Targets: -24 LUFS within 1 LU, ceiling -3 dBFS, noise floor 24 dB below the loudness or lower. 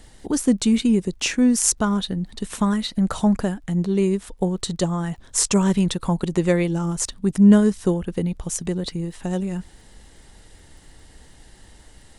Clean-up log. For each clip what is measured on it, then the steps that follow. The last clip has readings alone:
tick rate 39 per s; loudness -21.5 LUFS; peak level -1.5 dBFS; loudness target -24.0 LUFS
-> de-click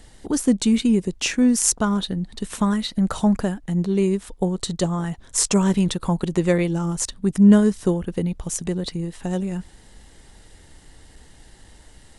tick rate 0 per s; loudness -21.5 LUFS; peak level -1.5 dBFS; loudness target -24.0 LUFS
-> trim -2.5 dB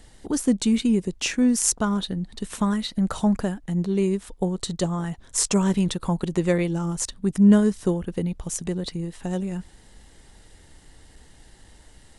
loudness -24.0 LUFS; peak level -4.0 dBFS; noise floor -52 dBFS

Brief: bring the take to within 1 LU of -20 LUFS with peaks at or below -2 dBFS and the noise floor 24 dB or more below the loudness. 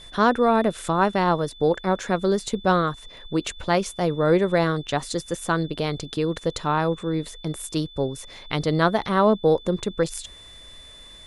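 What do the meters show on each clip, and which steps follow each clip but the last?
steady tone 3.5 kHz; tone level -44 dBFS; loudness -23.5 LUFS; peak level -6.5 dBFS; loudness target -20.0 LUFS
-> band-stop 3.5 kHz, Q 30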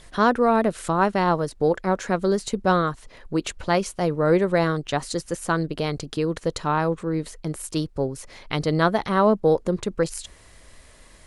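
steady tone not found; loudness -23.5 LUFS; peak level -6.5 dBFS; loudness target -20.0 LUFS
-> trim +3.5 dB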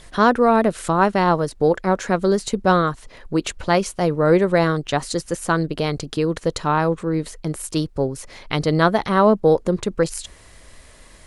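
loudness -20.0 LUFS; peak level -3.0 dBFS; noise floor -47 dBFS

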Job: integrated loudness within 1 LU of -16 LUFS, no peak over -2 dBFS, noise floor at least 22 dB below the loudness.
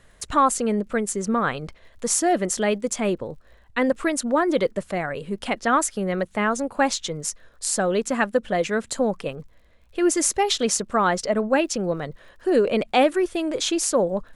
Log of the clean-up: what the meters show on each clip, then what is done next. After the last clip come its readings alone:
tick rate 47 per s; loudness -23.0 LUFS; peak level -5.5 dBFS; loudness target -16.0 LUFS
-> de-click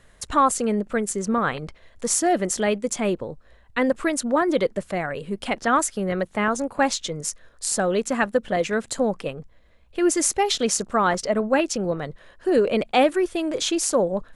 tick rate 0.070 per s; loudness -23.0 LUFS; peak level -5.5 dBFS; loudness target -16.0 LUFS
-> trim +7 dB; peak limiter -2 dBFS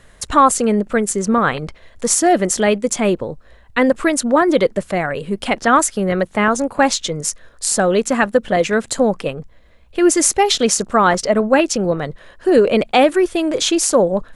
loudness -16.5 LUFS; peak level -2.0 dBFS; noise floor -47 dBFS

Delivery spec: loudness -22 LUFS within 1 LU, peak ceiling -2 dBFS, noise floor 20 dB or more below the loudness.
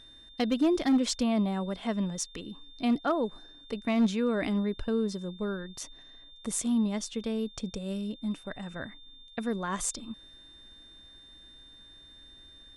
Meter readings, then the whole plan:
clipped samples 0.3%; clipping level -19.0 dBFS; steady tone 3.6 kHz; tone level -51 dBFS; loudness -30.5 LUFS; peak level -19.0 dBFS; loudness target -22.0 LUFS
-> clip repair -19 dBFS; band-stop 3.6 kHz, Q 30; trim +8.5 dB

